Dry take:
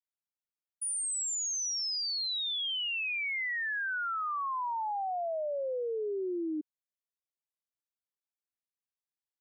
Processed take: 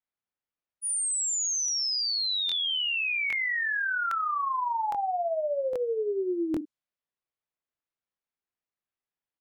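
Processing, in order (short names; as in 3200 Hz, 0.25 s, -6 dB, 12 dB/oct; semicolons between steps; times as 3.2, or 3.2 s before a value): doubler 41 ms -9.5 dB; low-pass opened by the level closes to 2600 Hz, open at -31 dBFS; crackling interface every 0.81 s, samples 1024, repeat, from 0.85; gain +4.5 dB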